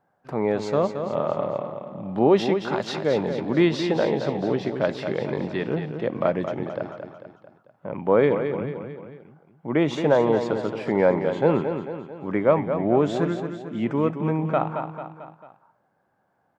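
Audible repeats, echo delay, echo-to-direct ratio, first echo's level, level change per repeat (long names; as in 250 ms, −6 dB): 4, 222 ms, −6.5 dB, −8.0 dB, −6.0 dB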